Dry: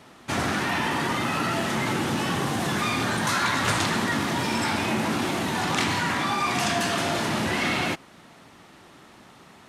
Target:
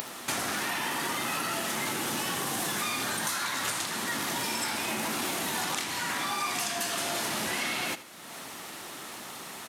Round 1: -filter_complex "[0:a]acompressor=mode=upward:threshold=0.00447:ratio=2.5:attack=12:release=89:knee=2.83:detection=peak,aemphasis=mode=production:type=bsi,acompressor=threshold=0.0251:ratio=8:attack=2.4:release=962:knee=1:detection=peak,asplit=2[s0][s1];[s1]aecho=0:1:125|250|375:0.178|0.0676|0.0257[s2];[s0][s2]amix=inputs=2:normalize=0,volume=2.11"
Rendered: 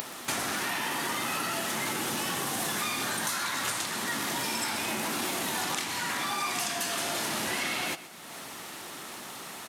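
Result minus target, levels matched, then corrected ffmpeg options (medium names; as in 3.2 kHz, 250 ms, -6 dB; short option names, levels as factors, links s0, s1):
echo 47 ms late
-filter_complex "[0:a]acompressor=mode=upward:threshold=0.00447:ratio=2.5:attack=12:release=89:knee=2.83:detection=peak,aemphasis=mode=production:type=bsi,acompressor=threshold=0.0251:ratio=8:attack=2.4:release=962:knee=1:detection=peak,asplit=2[s0][s1];[s1]aecho=0:1:78|156|234:0.178|0.0676|0.0257[s2];[s0][s2]amix=inputs=2:normalize=0,volume=2.11"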